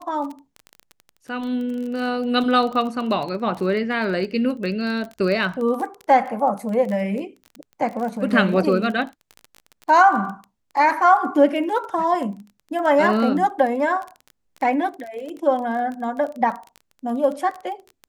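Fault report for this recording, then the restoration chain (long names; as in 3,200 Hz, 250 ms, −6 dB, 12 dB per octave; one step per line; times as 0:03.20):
surface crackle 21 per second −28 dBFS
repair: click removal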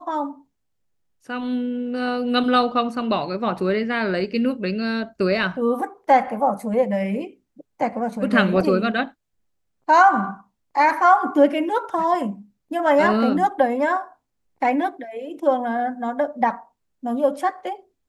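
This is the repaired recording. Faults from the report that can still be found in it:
none of them is left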